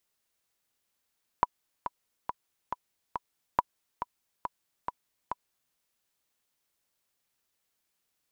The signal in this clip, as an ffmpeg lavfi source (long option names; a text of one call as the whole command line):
ffmpeg -f lavfi -i "aevalsrc='pow(10,(-8.5-10*gte(mod(t,5*60/139),60/139))/20)*sin(2*PI*981*mod(t,60/139))*exp(-6.91*mod(t,60/139)/0.03)':duration=4.31:sample_rate=44100" out.wav